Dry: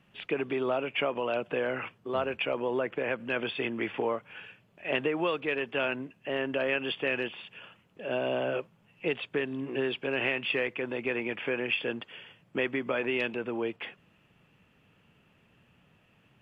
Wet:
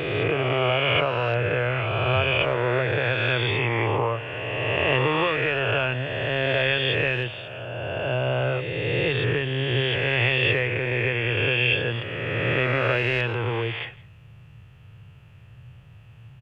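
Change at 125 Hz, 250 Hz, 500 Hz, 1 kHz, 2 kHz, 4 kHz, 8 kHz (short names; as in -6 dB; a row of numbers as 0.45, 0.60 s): +21.0 dB, +3.5 dB, +6.0 dB, +9.0 dB, +9.5 dB, +11.0 dB, n/a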